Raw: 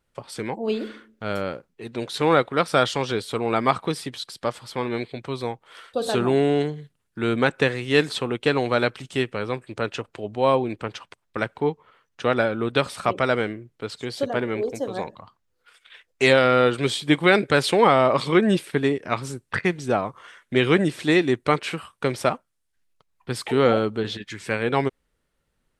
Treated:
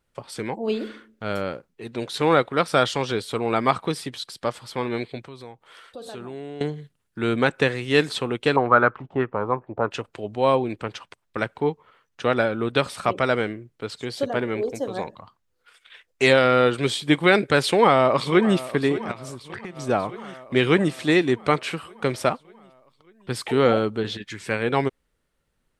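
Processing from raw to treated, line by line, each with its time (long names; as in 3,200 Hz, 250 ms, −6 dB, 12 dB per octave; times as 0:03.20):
0:05.24–0:06.61: downward compressor 2 to 1, threshold −45 dBFS
0:08.56–0:09.91: envelope-controlled low-pass 650–1,300 Hz up, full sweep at −18.5 dBFS
0:17.63–0:18.60: delay throw 590 ms, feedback 70%, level −16 dB
0:19.11–0:19.77: downward compressor 10 to 1, threshold −31 dBFS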